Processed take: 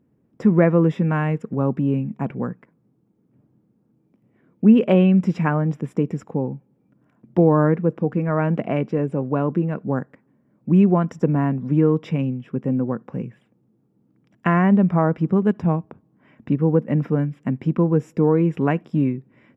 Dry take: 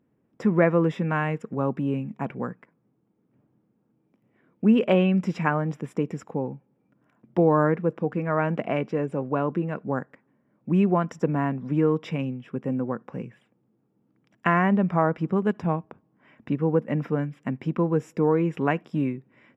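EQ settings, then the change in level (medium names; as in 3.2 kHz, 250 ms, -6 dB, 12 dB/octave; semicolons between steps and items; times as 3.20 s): bass shelf 430 Hz +9 dB; -1.0 dB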